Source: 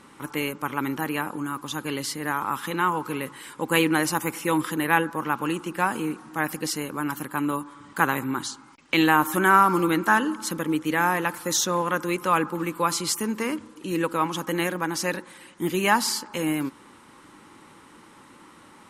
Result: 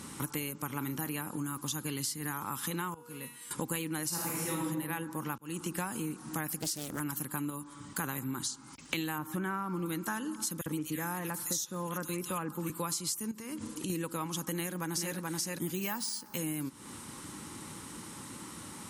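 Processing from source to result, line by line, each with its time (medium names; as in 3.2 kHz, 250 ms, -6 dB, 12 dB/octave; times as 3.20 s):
0.67–1.13 s: doubling 35 ms -13 dB
1.91–2.34 s: peaking EQ 580 Hz -11 dB 0.31 oct
2.94–3.51 s: feedback comb 240 Hz, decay 0.79 s, mix 90%
4.08–4.62 s: reverb throw, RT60 1.3 s, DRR -6 dB
5.38–5.83 s: fade in
6.58–7.00 s: loudspeaker Doppler distortion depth 0.65 ms
7.50–8.04 s: gain -5 dB
9.18–9.86 s: tone controls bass +3 dB, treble -14 dB
10.61–12.70 s: bands offset in time highs, lows 50 ms, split 2.2 kHz
13.31–13.90 s: compression, threshold -37 dBFS
14.54–15.15 s: echo throw 430 ms, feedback 15%, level -2 dB
15.75–16.38 s: careless resampling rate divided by 3×, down filtered, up hold
whole clip: high-pass 56 Hz; tone controls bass +11 dB, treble +14 dB; compression 8:1, threshold -33 dBFS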